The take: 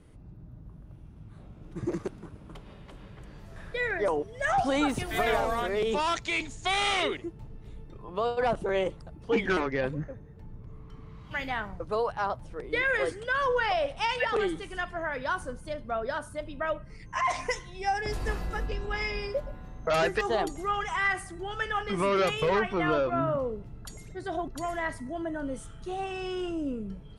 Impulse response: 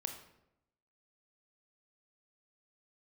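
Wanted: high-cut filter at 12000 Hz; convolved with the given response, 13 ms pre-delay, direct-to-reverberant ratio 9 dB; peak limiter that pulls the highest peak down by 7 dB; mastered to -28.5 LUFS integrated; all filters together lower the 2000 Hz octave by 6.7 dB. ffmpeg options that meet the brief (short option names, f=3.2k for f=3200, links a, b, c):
-filter_complex "[0:a]lowpass=12k,equalizer=f=2k:t=o:g=-8.5,alimiter=limit=-23dB:level=0:latency=1,asplit=2[a][b];[1:a]atrim=start_sample=2205,adelay=13[c];[b][c]afir=irnorm=-1:irlink=0,volume=-8.5dB[d];[a][d]amix=inputs=2:normalize=0,volume=4.5dB"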